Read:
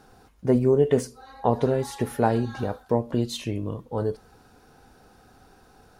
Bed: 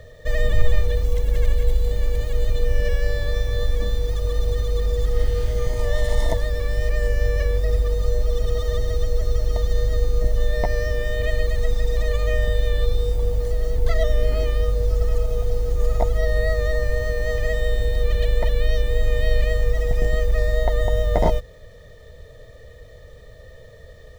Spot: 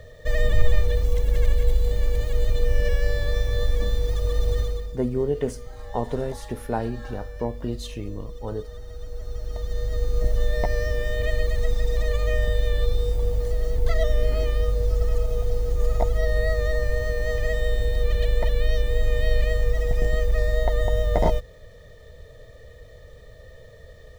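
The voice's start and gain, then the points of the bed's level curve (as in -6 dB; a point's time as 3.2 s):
4.50 s, -5.0 dB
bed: 4.62 s -1 dB
4.98 s -16.5 dB
8.82 s -16.5 dB
10.26 s -2 dB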